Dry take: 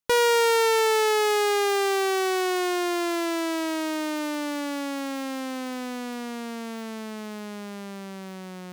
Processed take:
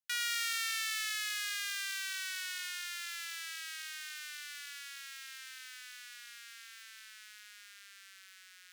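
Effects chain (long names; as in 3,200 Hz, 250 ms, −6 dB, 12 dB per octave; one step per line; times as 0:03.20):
elliptic high-pass filter 1,500 Hz, stop band 50 dB
on a send: delay with a high-pass on its return 104 ms, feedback 63%, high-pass 4,500 Hz, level −4 dB
on the sum: level −7.5 dB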